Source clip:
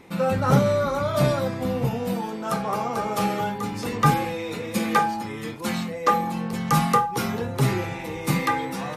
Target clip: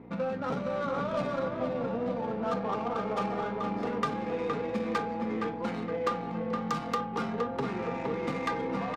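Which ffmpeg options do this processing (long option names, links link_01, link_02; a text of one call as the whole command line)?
ffmpeg -i in.wav -filter_complex "[0:a]aecho=1:1:4.3:0.38,acrossover=split=3500[link_01][link_02];[link_01]acompressor=threshold=-28dB:ratio=6[link_03];[link_03][link_02]amix=inputs=2:normalize=0,aeval=exprs='val(0)+0.0112*(sin(2*PI*60*n/s)+sin(2*PI*2*60*n/s)/2+sin(2*PI*3*60*n/s)/3+sin(2*PI*4*60*n/s)/4+sin(2*PI*5*60*n/s)/5)':channel_layout=same,highpass=220,lowpass=6100,adynamicsmooth=sensitivity=2.5:basefreq=990,asplit=2[link_04][link_05];[link_05]adelay=466,lowpass=frequency=2800:poles=1,volume=-4.5dB,asplit=2[link_06][link_07];[link_07]adelay=466,lowpass=frequency=2800:poles=1,volume=0.46,asplit=2[link_08][link_09];[link_09]adelay=466,lowpass=frequency=2800:poles=1,volume=0.46,asplit=2[link_10][link_11];[link_11]adelay=466,lowpass=frequency=2800:poles=1,volume=0.46,asplit=2[link_12][link_13];[link_13]adelay=466,lowpass=frequency=2800:poles=1,volume=0.46,asplit=2[link_14][link_15];[link_15]adelay=466,lowpass=frequency=2800:poles=1,volume=0.46[link_16];[link_04][link_06][link_08][link_10][link_12][link_14][link_16]amix=inputs=7:normalize=0" out.wav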